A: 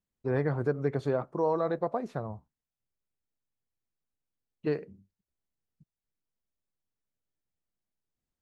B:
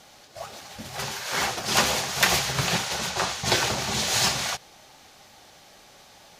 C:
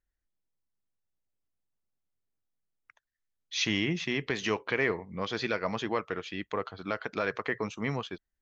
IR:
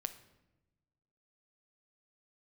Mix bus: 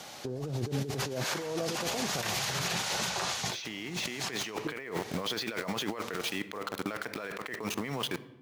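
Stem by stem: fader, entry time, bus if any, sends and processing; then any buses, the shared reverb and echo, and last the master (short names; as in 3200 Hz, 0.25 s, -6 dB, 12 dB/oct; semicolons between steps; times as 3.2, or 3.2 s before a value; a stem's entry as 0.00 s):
+2.0 dB, 0.00 s, send -17.5 dB, treble ducked by the level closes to 510 Hz, closed at -27 dBFS; auto duck -9 dB, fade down 1.60 s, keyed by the third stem
-12.5 dB, 0.00 s, send -3.5 dB, three-band squash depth 40%
+3.0 dB, 0.00 s, send -6 dB, HPF 130 Hz 6 dB/oct; high shelf 4200 Hz +3.5 dB; sample gate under -41 dBFS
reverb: on, RT60 1.0 s, pre-delay 7 ms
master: HPF 97 Hz 12 dB/oct; negative-ratio compressor -34 dBFS, ratio -1; limiter -22 dBFS, peak gain reduction 11.5 dB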